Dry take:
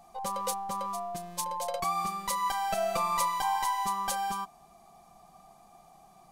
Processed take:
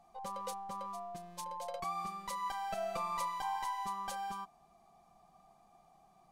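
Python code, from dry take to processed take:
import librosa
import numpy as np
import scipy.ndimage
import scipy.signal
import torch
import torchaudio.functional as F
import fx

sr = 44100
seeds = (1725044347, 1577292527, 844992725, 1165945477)

y = fx.high_shelf(x, sr, hz=6600.0, db=-9.0)
y = y * 10.0 ** (-8.0 / 20.0)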